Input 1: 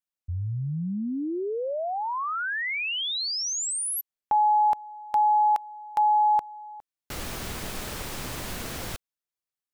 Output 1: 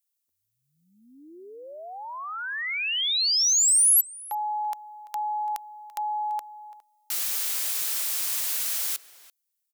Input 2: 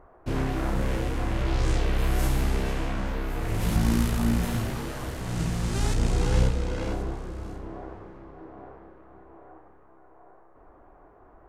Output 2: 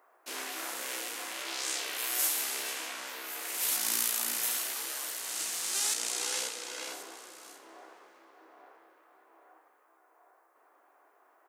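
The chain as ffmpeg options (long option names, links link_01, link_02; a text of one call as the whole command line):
ffmpeg -i in.wav -filter_complex "[0:a]highpass=frequency=280:width=0.5412,highpass=frequency=280:width=1.3066,aderivative,asplit=2[link_01][link_02];[link_02]adelay=338.2,volume=-17dB,highshelf=frequency=4000:gain=-7.61[link_03];[link_01][link_03]amix=inputs=2:normalize=0,asplit=2[link_04][link_05];[link_05]asoftclip=type=hard:threshold=-30dB,volume=-6dB[link_06];[link_04][link_06]amix=inputs=2:normalize=0,volume=6.5dB" out.wav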